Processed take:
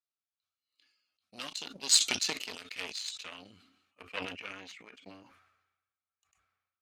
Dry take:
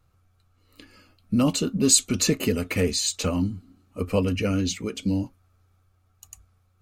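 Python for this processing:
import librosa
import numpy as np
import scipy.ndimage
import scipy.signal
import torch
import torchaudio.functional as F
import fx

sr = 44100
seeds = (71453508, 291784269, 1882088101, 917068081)

y = fx.cheby_harmonics(x, sr, harmonics=(2, 7), levels_db=(-12, -18), full_scale_db=-5.0)
y = fx.filter_sweep_bandpass(y, sr, from_hz=4100.0, to_hz=2000.0, start_s=2.34, end_s=5.05, q=1.5)
y = fx.sustainer(y, sr, db_per_s=57.0)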